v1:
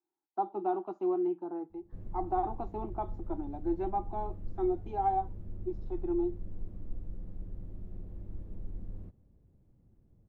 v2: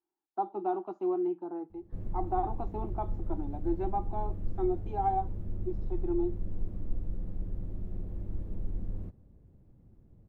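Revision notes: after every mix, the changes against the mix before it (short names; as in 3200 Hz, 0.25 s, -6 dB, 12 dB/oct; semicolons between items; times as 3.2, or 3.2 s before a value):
background +6.0 dB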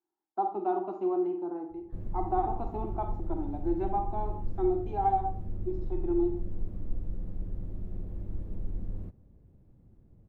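reverb: on, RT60 0.45 s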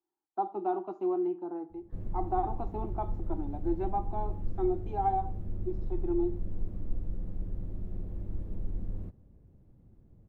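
speech: send -11.5 dB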